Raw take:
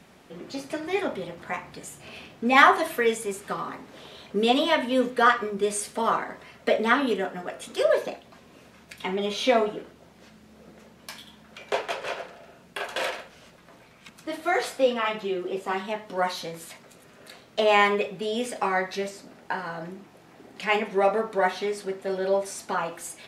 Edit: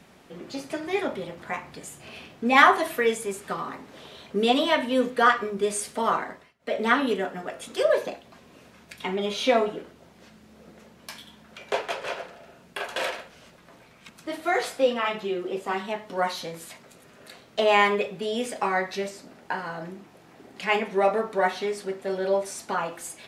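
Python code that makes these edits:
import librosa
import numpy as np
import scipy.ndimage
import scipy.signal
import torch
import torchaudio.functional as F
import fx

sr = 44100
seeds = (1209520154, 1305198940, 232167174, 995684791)

y = fx.edit(x, sr, fx.fade_down_up(start_s=6.27, length_s=0.59, db=-23.5, fade_s=0.27), tone=tone)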